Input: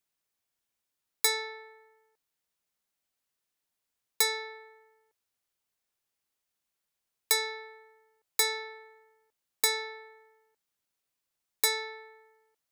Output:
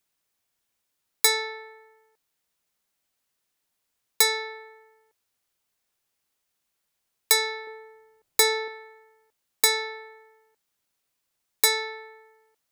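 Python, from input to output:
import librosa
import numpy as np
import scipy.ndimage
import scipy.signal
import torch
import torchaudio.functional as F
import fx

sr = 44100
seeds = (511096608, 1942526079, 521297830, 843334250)

y = fx.low_shelf(x, sr, hz=440.0, db=10.5, at=(7.67, 8.68))
y = y * 10.0 ** (6.0 / 20.0)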